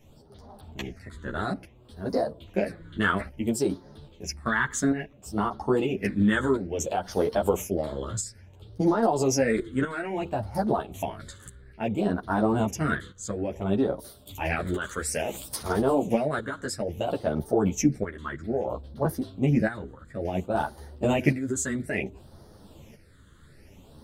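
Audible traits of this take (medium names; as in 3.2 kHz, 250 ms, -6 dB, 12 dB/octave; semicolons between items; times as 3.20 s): phasing stages 8, 0.59 Hz, lowest notch 720–2500 Hz; tremolo saw up 0.61 Hz, depth 60%; a shimmering, thickened sound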